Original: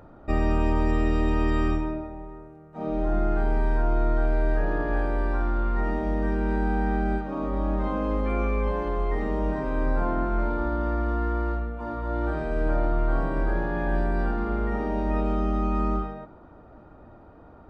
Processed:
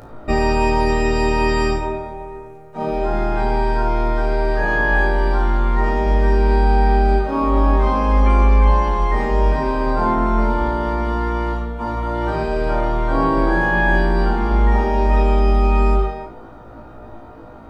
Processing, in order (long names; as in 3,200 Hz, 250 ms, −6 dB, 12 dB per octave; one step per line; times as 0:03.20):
high-shelf EQ 2,400 Hz +8 dB
flutter between parallel walls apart 3.1 metres, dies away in 0.34 s
on a send at −9 dB: convolution reverb RT60 0.30 s, pre-delay 8 ms
on the sum: level +7 dB